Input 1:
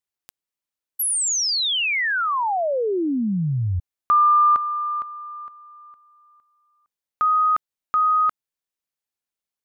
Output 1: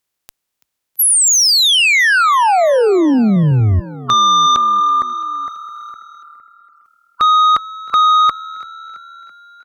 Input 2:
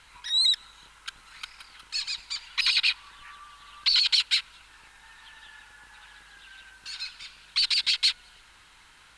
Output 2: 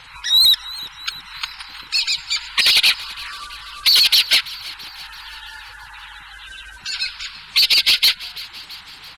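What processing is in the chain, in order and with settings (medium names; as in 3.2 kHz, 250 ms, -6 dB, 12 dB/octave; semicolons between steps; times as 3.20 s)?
coarse spectral quantiser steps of 30 dB; Chebyshev shaper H 5 -10 dB, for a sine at -10.5 dBFS; frequency-shifting echo 333 ms, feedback 61%, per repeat +38 Hz, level -19 dB; trim +5 dB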